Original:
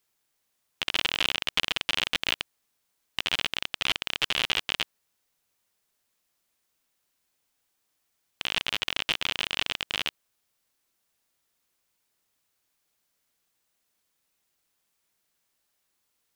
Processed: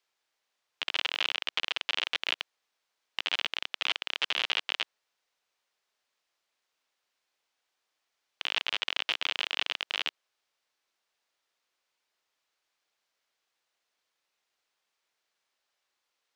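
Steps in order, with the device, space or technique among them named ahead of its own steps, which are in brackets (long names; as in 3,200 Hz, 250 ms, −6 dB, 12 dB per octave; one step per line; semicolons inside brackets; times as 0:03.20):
DJ mixer with the lows and highs turned down (three-way crossover with the lows and the highs turned down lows −16 dB, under 380 Hz, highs −17 dB, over 6,100 Hz; brickwall limiter −12.5 dBFS, peak gain reduction 9 dB)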